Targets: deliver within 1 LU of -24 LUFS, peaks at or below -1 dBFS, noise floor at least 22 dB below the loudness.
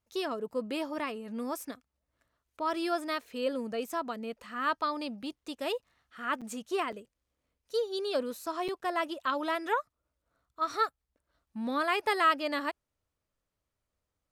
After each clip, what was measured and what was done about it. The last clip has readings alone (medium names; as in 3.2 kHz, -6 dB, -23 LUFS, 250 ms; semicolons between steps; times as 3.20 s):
dropouts 3; longest dropout 6.4 ms; loudness -33.0 LUFS; peak level -13.5 dBFS; loudness target -24.0 LUFS
-> interpolate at 6.41/6.92/8.68 s, 6.4 ms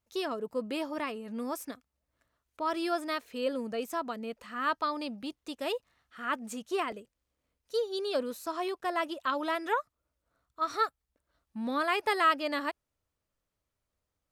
dropouts 0; loudness -33.0 LUFS; peak level -13.5 dBFS; loudness target -24.0 LUFS
-> trim +9 dB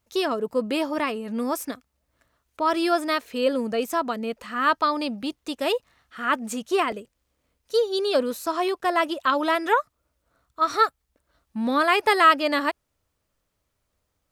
loudness -24.0 LUFS; peak level -4.5 dBFS; noise floor -76 dBFS